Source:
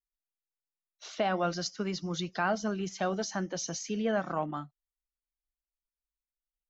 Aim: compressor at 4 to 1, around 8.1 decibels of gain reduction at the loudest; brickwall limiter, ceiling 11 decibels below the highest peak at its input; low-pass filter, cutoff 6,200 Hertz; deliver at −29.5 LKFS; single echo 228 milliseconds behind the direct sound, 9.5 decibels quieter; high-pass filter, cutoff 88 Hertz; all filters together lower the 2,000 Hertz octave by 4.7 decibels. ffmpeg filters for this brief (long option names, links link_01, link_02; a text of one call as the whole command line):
ffmpeg -i in.wav -af "highpass=88,lowpass=6200,equalizer=frequency=2000:width_type=o:gain=-7,acompressor=threshold=-35dB:ratio=4,alimiter=level_in=11dB:limit=-24dB:level=0:latency=1,volume=-11dB,aecho=1:1:228:0.335,volume=14dB" out.wav